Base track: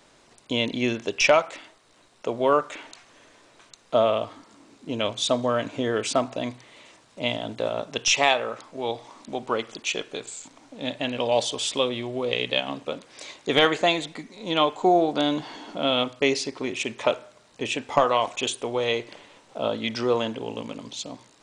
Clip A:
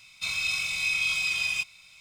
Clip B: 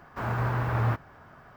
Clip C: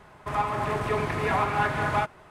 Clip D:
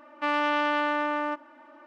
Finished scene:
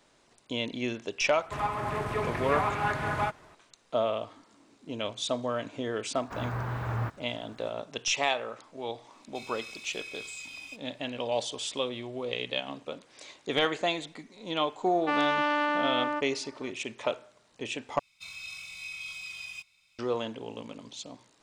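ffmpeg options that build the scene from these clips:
-filter_complex "[1:a]asplit=2[s0][s1];[0:a]volume=0.422,asplit=2[s2][s3];[s2]atrim=end=17.994[s4];[s1]atrim=end=2,asetpts=PTS-STARTPTS,volume=0.211[s5];[s3]atrim=start=19.986[s6];[3:a]atrim=end=2.3,asetpts=PTS-STARTPTS,volume=0.631,afade=t=in:d=0.004:c=hsin,afade=t=out:st=2.296:d=0.004:c=hsin,adelay=1250[s7];[2:a]atrim=end=1.56,asetpts=PTS-STARTPTS,volume=0.531,afade=t=in:d=0.004:c=hsin,afade=t=out:st=1.556:d=0.004:c=hsin,adelay=6140[s8];[s0]atrim=end=2,asetpts=PTS-STARTPTS,volume=0.158,afade=t=in:d=0.004:c=hsin,afade=t=out:st=1.996:d=0.004:c=hsin,adelay=9130[s9];[4:a]atrim=end=1.86,asetpts=PTS-STARTPTS,volume=0.841,afade=t=in:d=0.004:c=hsin,afade=t=out:st=1.856:d=0.004:c=hsin,adelay=14850[s10];[s4][s5]acrossfade=d=0.004:c1=hsin:c2=hsin[s11];[s11][s6]acrossfade=d=0.004:c1=hsin:c2=hsin[s12];[s12][s7][s8][s9][s10]amix=inputs=5:normalize=0"

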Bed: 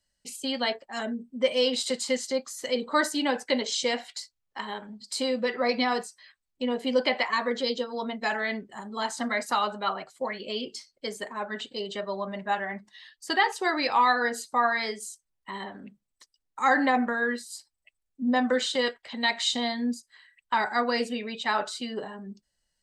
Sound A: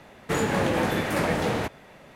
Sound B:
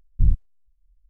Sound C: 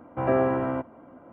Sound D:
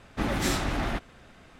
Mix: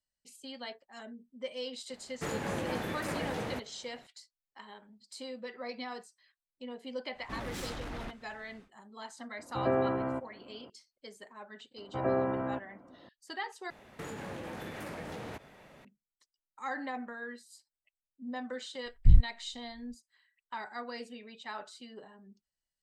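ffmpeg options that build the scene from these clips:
-filter_complex "[1:a]asplit=2[s0][s1];[3:a]asplit=2[s2][s3];[0:a]volume=0.178[s4];[4:a]asoftclip=type=tanh:threshold=0.0376[s5];[s3]acrossover=split=2600[s6][s7];[s7]acompressor=threshold=0.00141:ratio=4:attack=1:release=60[s8];[s6][s8]amix=inputs=2:normalize=0[s9];[s1]acompressor=threshold=0.0251:ratio=6:attack=3.2:release=140:knee=1:detection=peak[s10];[s4]asplit=2[s11][s12];[s11]atrim=end=13.704[s13];[s10]atrim=end=2.15,asetpts=PTS-STARTPTS,volume=0.473[s14];[s12]atrim=start=15.846[s15];[s0]atrim=end=2.15,asetpts=PTS-STARTPTS,volume=0.282,afade=t=in:d=0.004:c=hsin,afade=t=out:st=2.146:d=0.004:c=hsin,adelay=1920[s16];[s5]atrim=end=1.59,asetpts=PTS-STARTPTS,volume=0.398,afade=t=in:d=0.1,afade=t=out:st=1.49:d=0.1,adelay=7120[s17];[s2]atrim=end=1.32,asetpts=PTS-STARTPTS,volume=0.501,afade=t=in:d=0.004:c=hsin,afade=t=out:st=1.316:d=0.004:c=hsin,adelay=413658S[s18];[s9]atrim=end=1.32,asetpts=PTS-STARTPTS,volume=0.447,afade=t=in:d=0.004:c=hsin,afade=t=out:st=1.316:d=0.004:c=hsin,adelay=11770[s19];[2:a]atrim=end=1.09,asetpts=PTS-STARTPTS,volume=0.841,afade=t=in:d=0.004:c=hsin,afade=t=out:st=1.086:d=0.004:c=hsin,adelay=18860[s20];[s13][s14]acrossfade=d=0.004:c1=hsin:c2=hsin[s21];[s21][s15]acrossfade=d=0.004:c1=hsin:c2=hsin[s22];[s22][s16][s17][s18][s19][s20]amix=inputs=6:normalize=0"

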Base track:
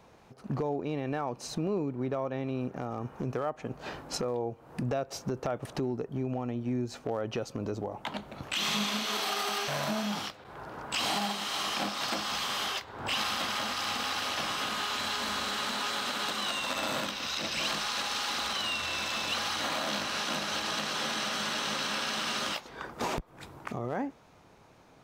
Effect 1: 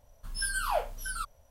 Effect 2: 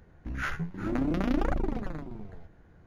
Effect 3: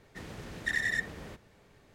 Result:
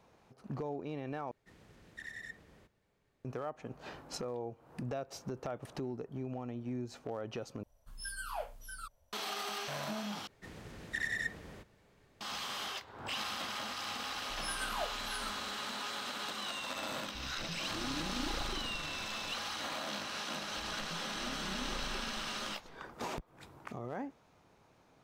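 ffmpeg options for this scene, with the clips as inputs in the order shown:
-filter_complex "[3:a]asplit=2[s0][s1];[1:a]asplit=2[s2][s3];[2:a]asplit=2[s4][s5];[0:a]volume=0.422[s6];[s5]aecho=1:1:4.9:0.65[s7];[s6]asplit=4[s8][s9][s10][s11];[s8]atrim=end=1.314[s12];[s0]atrim=end=1.94,asetpts=PTS-STARTPTS,volume=0.158[s13];[s9]atrim=start=3.246:end=7.634[s14];[s2]atrim=end=1.5,asetpts=PTS-STARTPTS,volume=0.299[s15];[s10]atrim=start=9.126:end=10.274[s16];[s1]atrim=end=1.94,asetpts=PTS-STARTPTS,volume=0.531[s17];[s11]atrim=start=12.206[s18];[s3]atrim=end=1.5,asetpts=PTS-STARTPTS,volume=0.335,afade=t=in:d=0.004:c=hsin,afade=t=out:st=1.496:d=0.004:c=hsin,adelay=14060[s19];[s4]atrim=end=2.86,asetpts=PTS-STARTPTS,volume=0.237,afade=t=in:d=0.004:c=hsin,afade=t=out:st=2.856:d=0.004:c=hsin,adelay=16890[s20];[s7]atrim=end=2.86,asetpts=PTS-STARTPTS,volume=0.133,afade=t=in:d=0.004:c=hsin,afade=t=out:st=2.856:d=0.004:c=hsin,adelay=20310[s21];[s12][s13]acrossfade=d=0.004:c1=hsin:c2=hsin[s22];[s22][s14]acrossfade=d=0.004:c1=hsin:c2=hsin[s23];[s23][s15]acrossfade=d=0.004:c1=hsin:c2=hsin[s24];[s24][s16]acrossfade=d=0.004:c1=hsin:c2=hsin[s25];[s25][s17]acrossfade=d=0.004:c1=hsin:c2=hsin[s26];[s26][s18]acrossfade=d=0.004:c1=hsin:c2=hsin[s27];[s27][s19][s20][s21]amix=inputs=4:normalize=0"

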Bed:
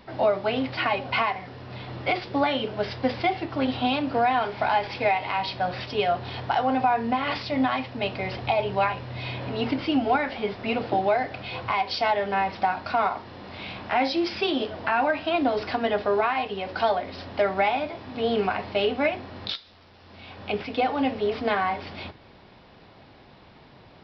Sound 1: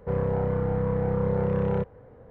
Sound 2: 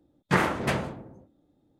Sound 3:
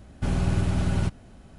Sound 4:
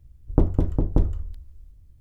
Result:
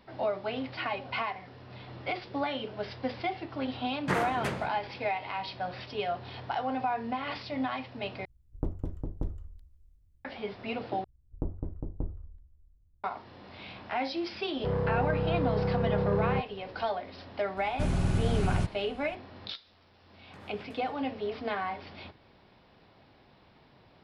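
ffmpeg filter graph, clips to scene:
-filter_complex "[2:a]asplit=2[s0][s1];[4:a]asplit=2[s2][s3];[0:a]volume=0.376[s4];[s3]lowpass=1200[s5];[1:a]asoftclip=type=tanh:threshold=0.0944[s6];[s1]acompressor=threshold=0.0141:ratio=20:attack=1.6:release=153:knee=1:detection=rms[s7];[s4]asplit=3[s8][s9][s10];[s8]atrim=end=8.254[s11];[s2]atrim=end=2,asetpts=PTS-STARTPTS,volume=0.2[s12];[s9]atrim=start=10.246:end=11.044[s13];[s5]atrim=end=2,asetpts=PTS-STARTPTS,volume=0.178[s14];[s10]atrim=start=13.036[s15];[s0]atrim=end=1.79,asetpts=PTS-STARTPTS,volume=0.473,afade=t=in:d=0.004:c=hsin,afade=t=out:st=1.786:d=0.004:c=hsin,adelay=166257S[s16];[s6]atrim=end=2.3,asetpts=PTS-STARTPTS,volume=0.841,afade=t=in:d=0.004:c=hsin,afade=t=out:st=2.296:d=0.004:c=hsin,adelay=14570[s17];[3:a]atrim=end=1.58,asetpts=PTS-STARTPTS,volume=0.668,afade=t=in:d=0.004:c=hsin,afade=t=out:st=1.576:d=0.004:c=hsin,adelay=17570[s18];[s7]atrim=end=1.79,asetpts=PTS-STARTPTS,volume=0.299,afade=t=in:d=0.004:c=hsin,afade=t=out:st=1.786:d=0.004:c=hsin,adelay=20030[s19];[s11][s12]acrossfade=d=0.004:c1=hsin:c2=hsin[s20];[s20][s13]acrossfade=d=0.004:c1=hsin:c2=hsin[s21];[s21][s14]acrossfade=d=0.004:c1=hsin:c2=hsin[s22];[s22][s15]acrossfade=d=0.004:c1=hsin:c2=hsin[s23];[s23][s16][s17][s18][s19]amix=inputs=5:normalize=0"

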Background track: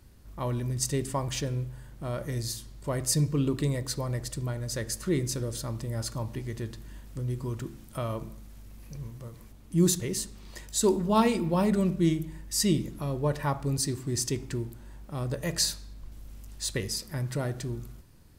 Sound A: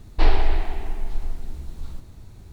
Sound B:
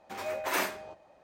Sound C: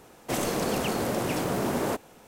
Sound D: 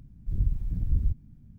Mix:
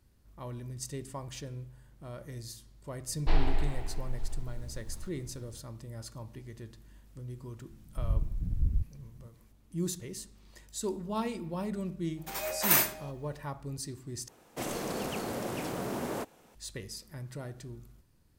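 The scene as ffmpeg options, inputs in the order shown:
-filter_complex "[0:a]volume=0.299[s0];[2:a]aemphasis=mode=production:type=75fm[s1];[s0]asplit=2[s2][s3];[s2]atrim=end=14.284[s4];[3:a]atrim=end=2.27,asetpts=PTS-STARTPTS,volume=0.422[s5];[s3]atrim=start=16.546[s6];[1:a]atrim=end=2.52,asetpts=PTS-STARTPTS,volume=0.355,afade=t=in:d=0.004:c=hsin,afade=t=out:st=2.516:d=0.004:c=hsin,adelay=3080[s7];[4:a]atrim=end=1.58,asetpts=PTS-STARTPTS,volume=0.668,afade=t=in:d=0.004:c=hsin,afade=t=out:st=1.576:d=0.004:c=hsin,adelay=339570S[s8];[s1]atrim=end=1.23,asetpts=PTS-STARTPTS,volume=0.841,afade=t=in:d=0.004:c=hsin,afade=t=out:st=1.226:d=0.004:c=hsin,adelay=12170[s9];[s4][s5]acrossfade=d=0.004:c1=hsin:c2=hsin[s10];[s10][s6]acrossfade=d=0.004:c1=hsin:c2=hsin[s11];[s11][s7][s8][s9]amix=inputs=4:normalize=0"

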